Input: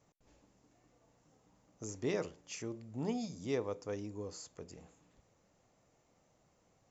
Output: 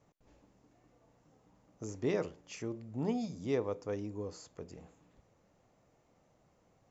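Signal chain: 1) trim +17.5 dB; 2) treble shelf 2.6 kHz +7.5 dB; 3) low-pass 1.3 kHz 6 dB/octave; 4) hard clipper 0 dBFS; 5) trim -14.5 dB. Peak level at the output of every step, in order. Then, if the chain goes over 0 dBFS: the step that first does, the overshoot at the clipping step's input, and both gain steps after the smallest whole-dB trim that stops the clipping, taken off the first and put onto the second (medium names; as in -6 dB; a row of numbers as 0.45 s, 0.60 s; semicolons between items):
-4.5 dBFS, -2.5 dBFS, -5.5 dBFS, -5.5 dBFS, -20.0 dBFS; nothing clips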